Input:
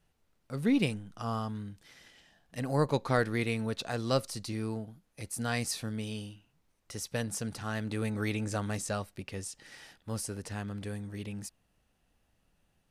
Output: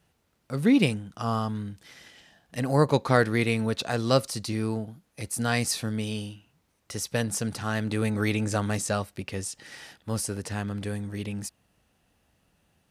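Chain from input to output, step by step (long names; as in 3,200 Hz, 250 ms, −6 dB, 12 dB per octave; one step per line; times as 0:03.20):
high-pass filter 58 Hz
level +6.5 dB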